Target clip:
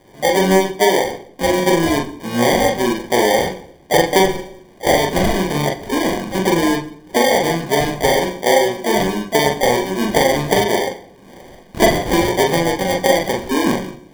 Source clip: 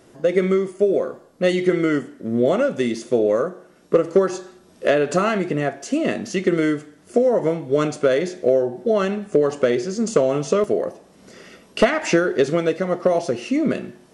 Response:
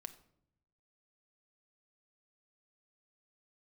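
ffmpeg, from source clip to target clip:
-filter_complex "[0:a]asplit=2[link_01][link_02];[link_02]asetrate=66075,aresample=44100,atempo=0.66742,volume=-5dB[link_03];[link_01][link_03]amix=inputs=2:normalize=0,acrusher=samples=33:mix=1:aa=0.000001,asplit=2[link_04][link_05];[1:a]atrim=start_sample=2205,lowpass=6100,adelay=42[link_06];[link_05][link_06]afir=irnorm=-1:irlink=0,volume=3dB[link_07];[link_04][link_07]amix=inputs=2:normalize=0"

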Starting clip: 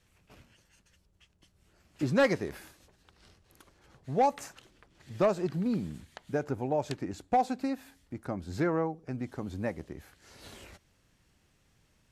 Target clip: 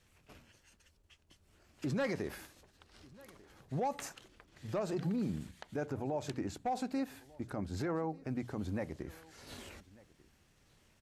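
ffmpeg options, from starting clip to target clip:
ffmpeg -i in.wav -filter_complex "[0:a]bandreject=frequency=60:width_type=h:width=6,bandreject=frequency=120:width_type=h:width=6,bandreject=frequency=180:width_type=h:width=6,alimiter=level_in=4dB:limit=-24dB:level=0:latency=1:release=37,volume=-4dB,atempo=1.1,asplit=2[link_01][link_02];[link_02]aecho=0:1:1194:0.0708[link_03];[link_01][link_03]amix=inputs=2:normalize=0" out.wav

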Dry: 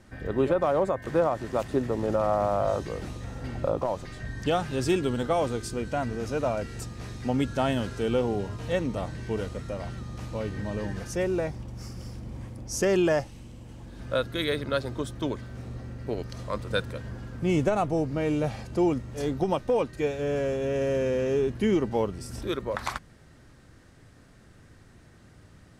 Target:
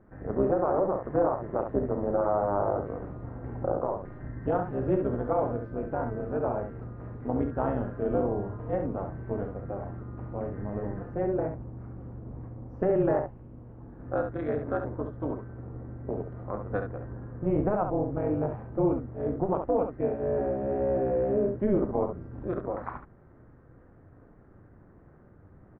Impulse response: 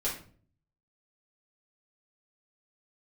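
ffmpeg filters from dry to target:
-af "lowpass=frequency=1400:width=0.5412,lowpass=frequency=1400:width=1.3066,equalizer=frequency=440:width_type=o:width=0.77:gain=2.5,areverse,acompressor=mode=upward:threshold=-46dB:ratio=2.5,areverse,tremolo=f=200:d=0.857,aecho=1:1:33|68:0.266|0.447"

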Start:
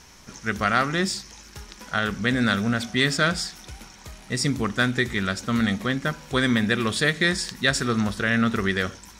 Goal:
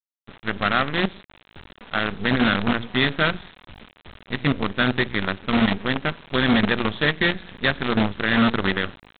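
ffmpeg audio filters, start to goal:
ffmpeg -i in.wav -af "equalizer=frequency=210:width=0.91:gain=3,bandreject=frequency=60:width_type=h:width=6,bandreject=frequency=120:width_type=h:width=6,bandreject=frequency=180:width_type=h:width=6,aresample=8000,acrusher=bits=4:dc=4:mix=0:aa=0.000001,aresample=44100" out.wav

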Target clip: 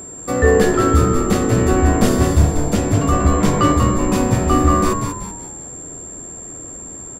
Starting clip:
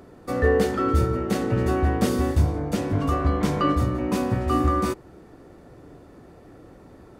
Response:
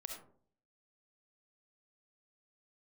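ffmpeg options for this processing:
-filter_complex "[0:a]aeval=exprs='val(0)+0.0112*sin(2*PI*7400*n/s)':channel_layout=same,asplit=6[link_01][link_02][link_03][link_04][link_05][link_06];[link_02]adelay=190,afreqshift=-84,volume=-6dB[link_07];[link_03]adelay=380,afreqshift=-168,volume=-14dB[link_08];[link_04]adelay=570,afreqshift=-252,volume=-21.9dB[link_09];[link_05]adelay=760,afreqshift=-336,volume=-29.9dB[link_10];[link_06]adelay=950,afreqshift=-420,volume=-37.8dB[link_11];[link_01][link_07][link_08][link_09][link_10][link_11]amix=inputs=6:normalize=0,volume=6.5dB"

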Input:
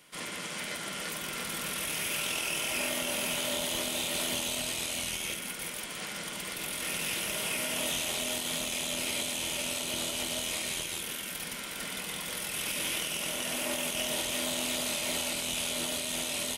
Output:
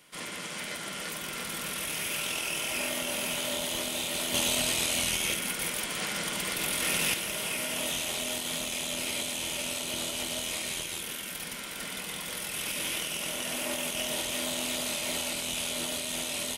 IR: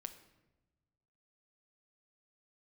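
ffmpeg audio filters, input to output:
-filter_complex "[0:a]asettb=1/sr,asplit=3[link_01][link_02][link_03];[link_01]atrim=end=4.344[link_04];[link_02]atrim=start=4.34:end=7.14,asetpts=PTS-STARTPTS,afade=type=in:duration=0.004:curve=qsin,afade=type=out:start_time=2.796:duration=0.004:curve=qsin,acontrast=40[link_05];[link_03]atrim=start=7.136[link_06];[link_04][link_05]acrossfade=duration=0.004:curve1=hsin:curve2=qsin[link_07];[link_07][link_06]acrossfade=duration=0.004:curve1=qsin:curve2=hsin"

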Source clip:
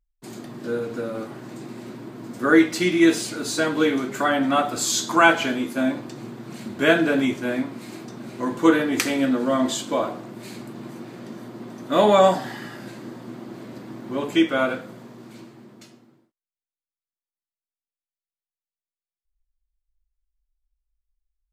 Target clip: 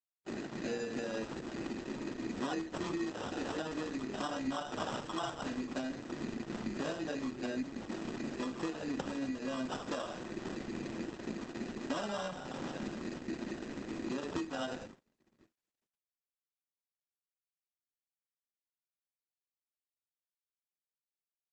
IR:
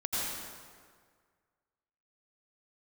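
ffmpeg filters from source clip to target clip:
-filter_complex "[0:a]acrossover=split=160|3000[link_01][link_02][link_03];[link_02]acompressor=threshold=-33dB:ratio=2[link_04];[link_01][link_04][link_03]amix=inputs=3:normalize=0,asettb=1/sr,asplit=3[link_05][link_06][link_07];[link_05]atrim=end=13.244[link_08];[link_06]atrim=start=13.24:end=15.42,asetpts=PTS-STARTPTS,afade=type=in:duration=0.004:curve=qsin,afade=type=out:start_time=2.176:duration=0.004:curve=qsin,equalizer=frequency=3900:width_type=o:width=1.2:gain=-3.5[link_09];[link_07]atrim=start=15.416[link_10];[link_08][link_09]acrossfade=duration=0.004:curve1=hsin:curve2=qsin[link_11];[link_11][link_10]acrossfade=duration=0.004:curve1=qsin:curve2=hsin,acrusher=samples=20:mix=1:aa=0.000001,bandreject=frequency=60:width_type=h:width=6,bandreject=frequency=120:width_type=h:width=6,bandreject=frequency=180:width_type=h:width=6,bandreject=frequency=240:width_type=h:width=6,bandreject=frequency=300:width_type=h:width=6,bandreject=frequency=360:width_type=h:width=6,bandreject=frequency=420:width_type=h:width=6,bandreject=frequency=480:width_type=h:width=6,aecho=1:1:68|136|204:0.178|0.0498|0.0139,agate=range=-55dB:threshold=-39dB:ratio=16:detection=peak,highpass=120,adynamicequalizer=threshold=0.00562:dfrequency=240:dqfactor=2.7:tfrequency=240:tqfactor=2.7:attack=5:release=100:ratio=0.375:range=1.5:mode=boostabove:tftype=bell,acompressor=threshold=-33dB:ratio=16" -ar 48000 -c:a libopus -b:a 10k

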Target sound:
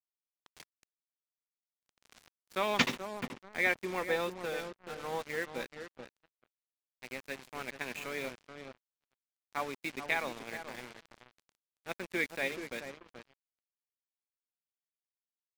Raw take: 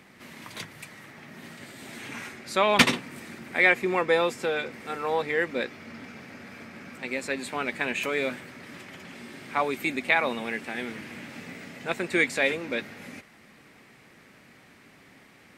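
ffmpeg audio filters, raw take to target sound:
ffmpeg -i in.wav -filter_complex "[0:a]aresample=16000,aresample=44100,aeval=exprs='sgn(val(0))*max(abs(val(0))-0.0168,0)':channel_layout=same,asplit=2[link_01][link_02];[link_02]adelay=430,lowpass=frequency=840:poles=1,volume=-7dB,asplit=2[link_03][link_04];[link_04]adelay=430,lowpass=frequency=840:poles=1,volume=0.35,asplit=2[link_05][link_06];[link_06]adelay=430,lowpass=frequency=840:poles=1,volume=0.35,asplit=2[link_07][link_08];[link_08]adelay=430,lowpass=frequency=840:poles=1,volume=0.35[link_09];[link_01][link_03][link_05][link_07][link_09]amix=inputs=5:normalize=0,acrusher=bits=5:mix=0:aa=0.5,volume=-8.5dB" out.wav

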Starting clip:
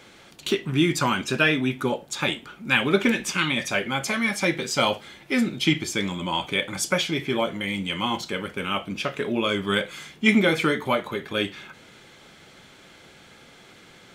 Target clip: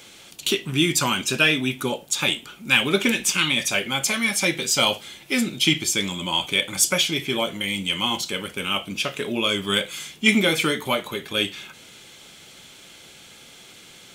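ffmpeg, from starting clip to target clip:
ffmpeg -i in.wav -af "aexciter=amount=2:drive=7.4:freq=2500,volume=-1dB" out.wav

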